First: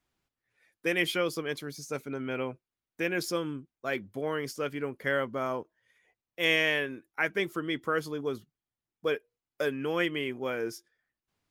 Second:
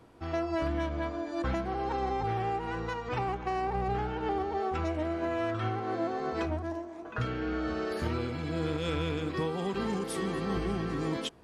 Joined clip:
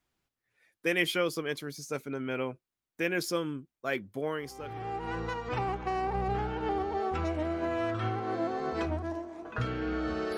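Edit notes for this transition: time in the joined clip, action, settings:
first
0:04.67: continue with second from 0:02.27, crossfade 0.88 s quadratic

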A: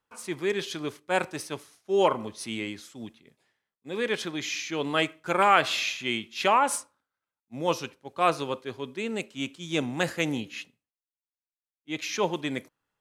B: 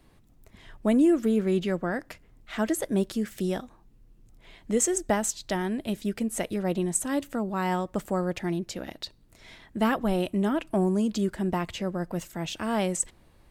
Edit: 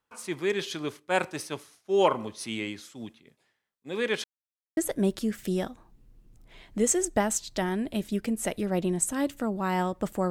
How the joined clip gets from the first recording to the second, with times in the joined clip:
A
0:04.24–0:04.77: silence
0:04.77: continue with B from 0:02.70

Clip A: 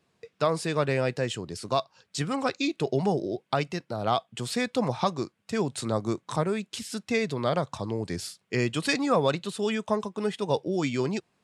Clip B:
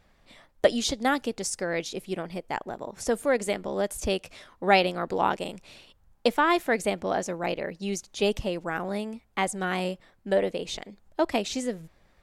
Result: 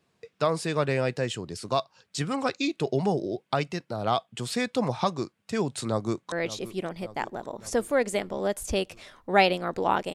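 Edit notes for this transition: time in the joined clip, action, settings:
clip A
0:05.87–0:06.32: delay throw 570 ms, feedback 65%, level −15 dB
0:06.32: continue with clip B from 0:01.66

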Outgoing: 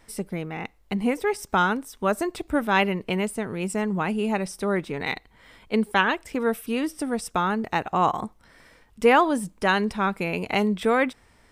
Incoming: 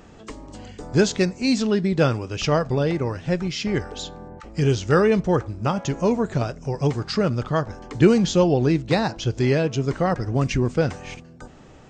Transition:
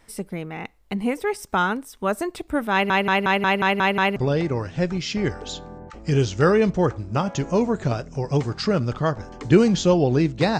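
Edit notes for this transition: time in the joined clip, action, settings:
outgoing
0:02.72: stutter in place 0.18 s, 8 plays
0:04.16: continue with incoming from 0:02.66

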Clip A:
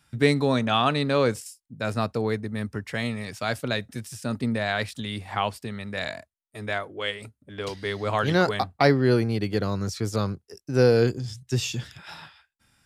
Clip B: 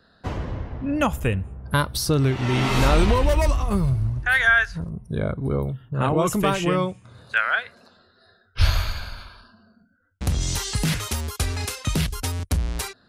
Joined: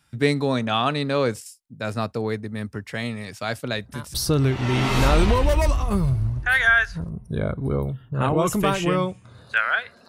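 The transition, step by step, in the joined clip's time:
clip A
0:03.74: mix in clip B from 0:01.54 0.40 s −17 dB
0:04.14: continue with clip B from 0:01.94

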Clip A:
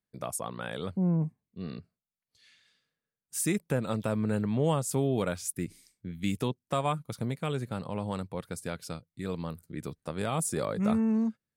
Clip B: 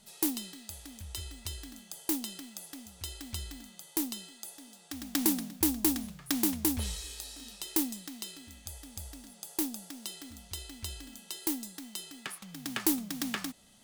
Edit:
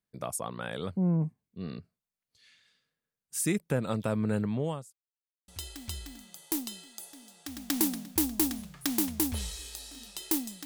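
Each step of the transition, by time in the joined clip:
clip A
0:04.42–0:04.93: fade out linear
0:04.93–0:05.48: silence
0:05.48: continue with clip B from 0:02.93

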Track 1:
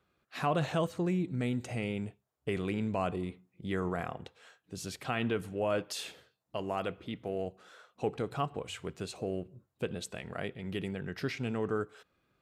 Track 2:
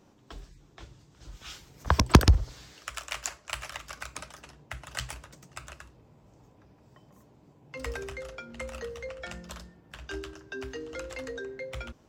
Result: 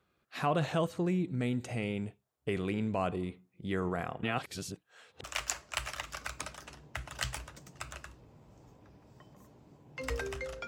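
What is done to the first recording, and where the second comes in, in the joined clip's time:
track 1
0:04.23–0:05.24: reverse
0:05.24: continue with track 2 from 0:03.00

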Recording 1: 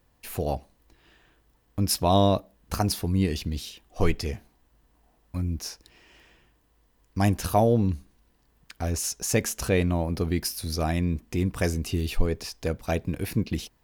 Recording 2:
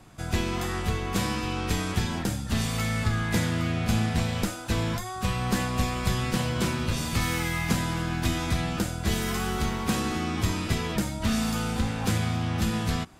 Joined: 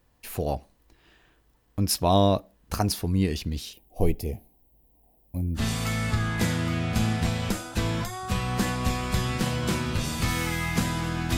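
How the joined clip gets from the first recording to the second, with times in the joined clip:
recording 1
0:03.73–0:05.62: drawn EQ curve 800 Hz 0 dB, 1,400 Hz −25 dB, 2,200 Hz −9 dB, 5,900 Hz −11 dB, 8,400 Hz −3 dB, 13,000 Hz +10 dB
0:05.58: continue with recording 2 from 0:02.51, crossfade 0.08 s

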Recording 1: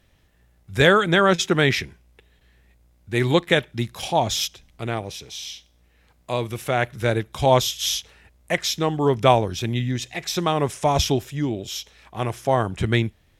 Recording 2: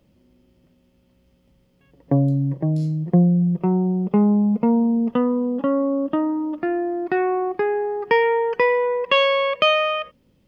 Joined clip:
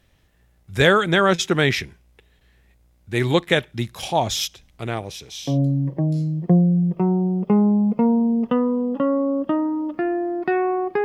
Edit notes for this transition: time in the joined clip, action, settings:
recording 1
0:05.50: continue with recording 2 from 0:02.14, crossfade 0.20 s

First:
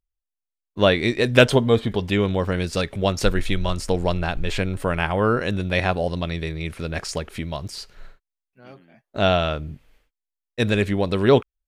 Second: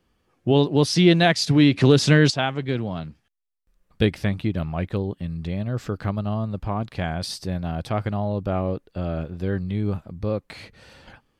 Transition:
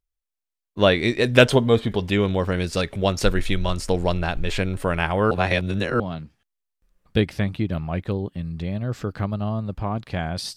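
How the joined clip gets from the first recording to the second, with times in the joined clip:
first
0:05.31–0:06.00: reverse
0:06.00: continue with second from 0:02.85

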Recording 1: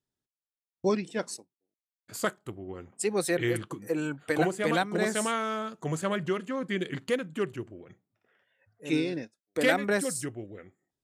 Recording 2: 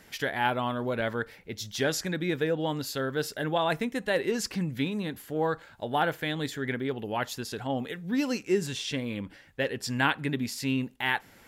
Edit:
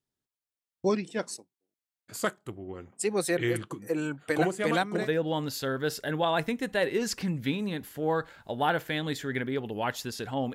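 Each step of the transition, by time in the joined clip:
recording 1
0:05.03: continue with recording 2 from 0:02.36, crossfade 0.12 s

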